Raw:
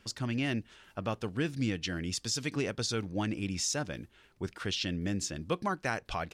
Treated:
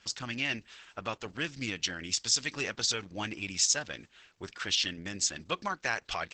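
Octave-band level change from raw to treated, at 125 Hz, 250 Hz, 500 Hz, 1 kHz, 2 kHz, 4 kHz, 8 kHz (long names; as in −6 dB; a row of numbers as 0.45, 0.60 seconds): −9.0, −7.5, −4.0, 0.0, +4.0, +5.5, +6.5 decibels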